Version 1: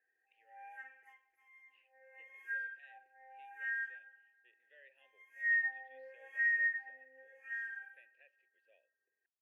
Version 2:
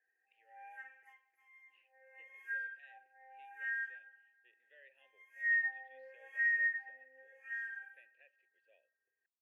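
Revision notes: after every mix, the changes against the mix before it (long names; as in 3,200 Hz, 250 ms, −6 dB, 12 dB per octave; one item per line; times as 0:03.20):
background: add low-shelf EQ 240 Hz −10.5 dB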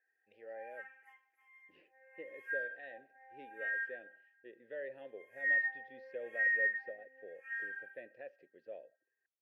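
speech: remove resonant band-pass 2,700 Hz, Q 3.5
master: add thirty-one-band graphic EQ 100 Hz +10 dB, 250 Hz +6 dB, 1,250 Hz +7 dB, 6,300 Hz −6 dB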